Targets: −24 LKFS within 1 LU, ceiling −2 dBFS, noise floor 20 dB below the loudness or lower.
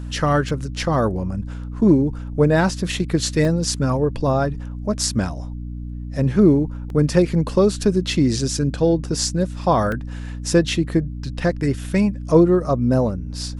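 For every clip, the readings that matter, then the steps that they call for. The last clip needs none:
number of dropouts 6; longest dropout 1.9 ms; mains hum 60 Hz; hum harmonics up to 300 Hz; level of the hum −28 dBFS; integrated loudness −20.0 LKFS; sample peak −1.5 dBFS; target loudness −24.0 LKFS
→ repair the gap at 0:00.49/0:03.45/0:06.90/0:09.92/0:11.24/0:11.84, 1.9 ms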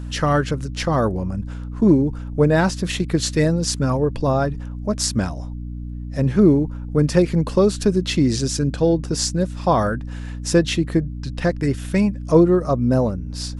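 number of dropouts 0; mains hum 60 Hz; hum harmonics up to 300 Hz; level of the hum −28 dBFS
→ hum removal 60 Hz, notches 5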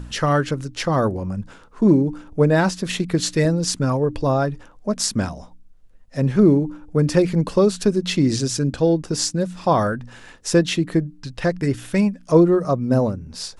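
mains hum none found; integrated loudness −20.0 LKFS; sample peak −2.5 dBFS; target loudness −24.0 LKFS
→ level −4 dB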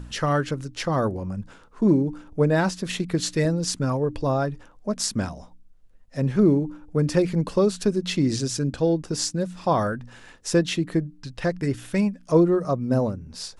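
integrated loudness −24.0 LKFS; sample peak −6.5 dBFS; background noise floor −51 dBFS

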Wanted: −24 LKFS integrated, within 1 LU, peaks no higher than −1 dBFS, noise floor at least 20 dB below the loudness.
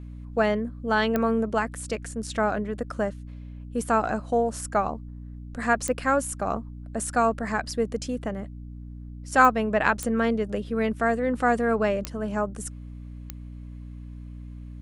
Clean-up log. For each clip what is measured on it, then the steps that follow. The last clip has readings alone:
number of clicks 6; mains hum 60 Hz; hum harmonics up to 300 Hz; level of the hum −37 dBFS; integrated loudness −26.0 LKFS; sample peak −5.0 dBFS; target loudness −24.0 LKFS
→ click removal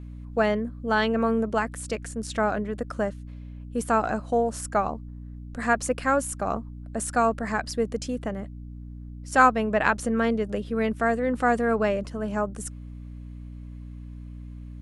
number of clicks 0; mains hum 60 Hz; hum harmonics up to 300 Hz; level of the hum −37 dBFS
→ hum removal 60 Hz, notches 5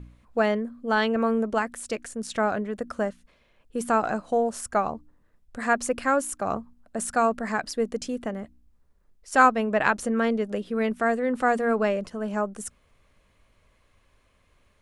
mains hum none found; integrated loudness −26.0 LKFS; sample peak −4.5 dBFS; target loudness −24.0 LKFS
→ level +2 dB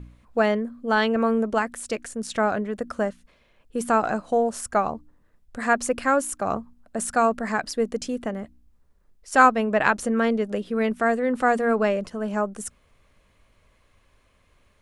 integrated loudness −24.0 LKFS; sample peak −2.5 dBFS; background noise floor −63 dBFS

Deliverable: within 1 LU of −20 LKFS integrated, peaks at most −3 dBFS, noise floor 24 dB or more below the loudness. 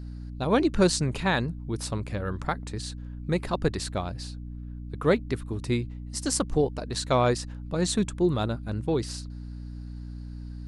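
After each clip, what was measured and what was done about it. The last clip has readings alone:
mains hum 60 Hz; hum harmonics up to 300 Hz; level of the hum −35 dBFS; integrated loudness −28.0 LKFS; sample peak −9.0 dBFS; target loudness −20.0 LKFS
→ hum removal 60 Hz, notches 5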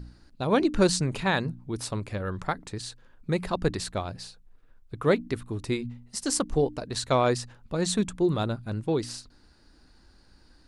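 mains hum none found; integrated loudness −28.5 LKFS; sample peak −9.5 dBFS; target loudness −20.0 LKFS
→ level +8.5 dB
brickwall limiter −3 dBFS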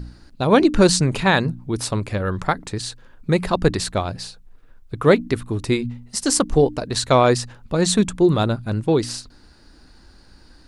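integrated loudness −20.0 LKFS; sample peak −3.0 dBFS; background noise floor −50 dBFS

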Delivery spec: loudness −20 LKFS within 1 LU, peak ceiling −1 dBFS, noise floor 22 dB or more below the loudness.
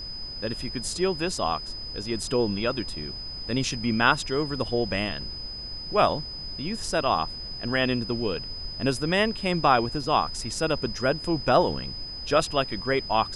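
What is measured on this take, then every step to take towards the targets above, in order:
interfering tone 5,000 Hz; level of the tone −35 dBFS; background noise floor −37 dBFS; target noise floor −49 dBFS; integrated loudness −26.5 LKFS; sample peak −5.5 dBFS; target loudness −20.0 LKFS
→ notch filter 5,000 Hz, Q 30
noise reduction from a noise print 12 dB
level +6.5 dB
brickwall limiter −1 dBFS

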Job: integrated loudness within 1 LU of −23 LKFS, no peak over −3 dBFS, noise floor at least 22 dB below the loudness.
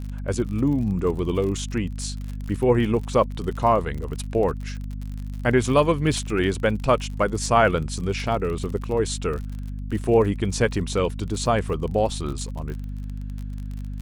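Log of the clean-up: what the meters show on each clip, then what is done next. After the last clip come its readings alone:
crackle rate 45 per second; mains hum 50 Hz; hum harmonics up to 250 Hz; level of the hum −29 dBFS; integrated loudness −24.0 LKFS; sample peak −4.5 dBFS; target loudness −23.0 LKFS
→ click removal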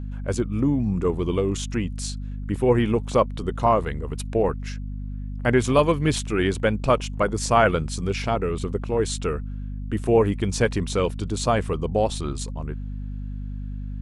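crackle rate 0.071 per second; mains hum 50 Hz; hum harmonics up to 250 Hz; level of the hum −29 dBFS
→ hum removal 50 Hz, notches 5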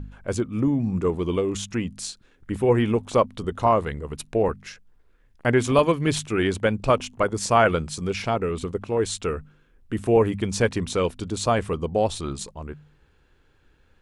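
mains hum none found; integrated loudness −24.0 LKFS; sample peak −4.5 dBFS; target loudness −23.0 LKFS
→ level +1 dB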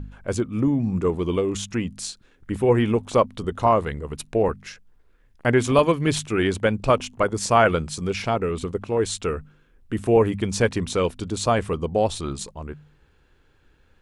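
integrated loudness −23.0 LKFS; sample peak −3.5 dBFS; background noise floor −59 dBFS

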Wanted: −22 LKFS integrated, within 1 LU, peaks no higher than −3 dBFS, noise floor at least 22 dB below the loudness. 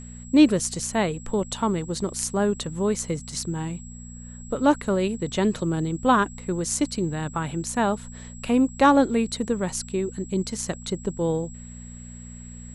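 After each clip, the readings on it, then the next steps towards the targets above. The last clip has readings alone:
mains hum 60 Hz; hum harmonics up to 240 Hz; level of the hum −38 dBFS; interfering tone 7,700 Hz; level of the tone −45 dBFS; integrated loudness −24.5 LKFS; sample peak −6.0 dBFS; target loudness −22.0 LKFS
→ hum removal 60 Hz, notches 4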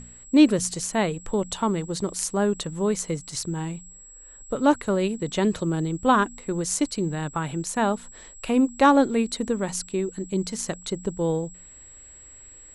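mains hum none found; interfering tone 7,700 Hz; level of the tone −45 dBFS
→ notch filter 7,700 Hz, Q 30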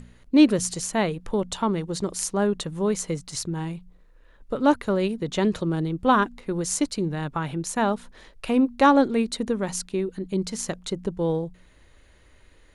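interfering tone none found; integrated loudness −24.5 LKFS; sample peak −6.5 dBFS; target loudness −22.0 LKFS
→ level +2.5 dB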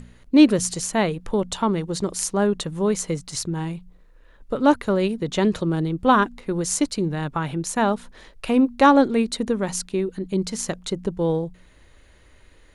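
integrated loudness −22.0 LKFS; sample peak −4.0 dBFS; background noise floor −52 dBFS

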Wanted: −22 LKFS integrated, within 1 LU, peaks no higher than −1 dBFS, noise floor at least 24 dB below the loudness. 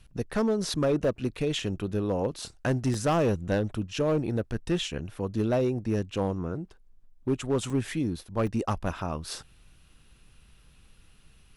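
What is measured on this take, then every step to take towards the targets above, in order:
share of clipped samples 1.5%; peaks flattened at −19.5 dBFS; number of dropouts 6; longest dropout 2.4 ms; integrated loudness −29.0 LKFS; sample peak −19.5 dBFS; target loudness −22.0 LKFS
→ clipped peaks rebuilt −19.5 dBFS
repair the gap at 0:01.04/0:01.59/0:02.42/0:02.94/0:07.70/0:08.47, 2.4 ms
level +7 dB

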